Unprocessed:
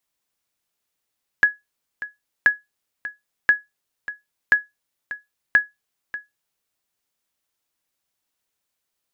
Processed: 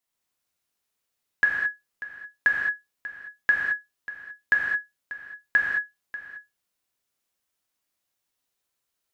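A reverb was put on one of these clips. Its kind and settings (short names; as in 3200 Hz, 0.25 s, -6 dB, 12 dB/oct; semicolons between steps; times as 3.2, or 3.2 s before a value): non-linear reverb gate 0.24 s flat, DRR -3 dB; gain -6 dB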